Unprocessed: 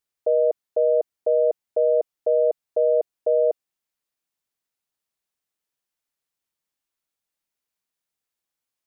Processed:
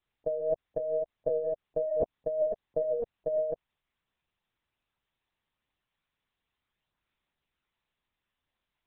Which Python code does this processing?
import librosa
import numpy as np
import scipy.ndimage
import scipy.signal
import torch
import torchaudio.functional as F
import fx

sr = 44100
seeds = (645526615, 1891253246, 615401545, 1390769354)

y = fx.chorus_voices(x, sr, voices=2, hz=0.35, base_ms=20, depth_ms=4.2, mix_pct=50)
y = fx.over_compress(y, sr, threshold_db=-31.0, ratio=-1.0)
y = fx.lpc_vocoder(y, sr, seeds[0], excitation='pitch_kept', order=8)
y = y * 10.0 ** (1.5 / 20.0)